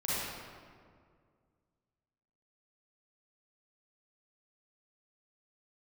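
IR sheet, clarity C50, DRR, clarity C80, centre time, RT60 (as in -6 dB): -6.5 dB, -10.0 dB, -2.5 dB, 148 ms, 2.0 s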